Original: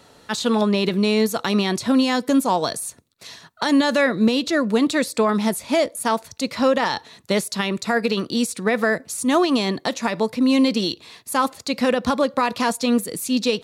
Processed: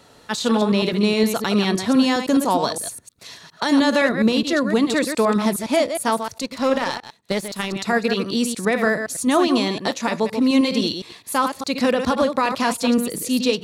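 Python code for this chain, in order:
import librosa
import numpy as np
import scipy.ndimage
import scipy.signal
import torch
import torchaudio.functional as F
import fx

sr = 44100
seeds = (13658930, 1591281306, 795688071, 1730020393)

y = fx.reverse_delay(x, sr, ms=103, wet_db=-7.0)
y = fx.power_curve(y, sr, exponent=1.4, at=(6.42, 7.76))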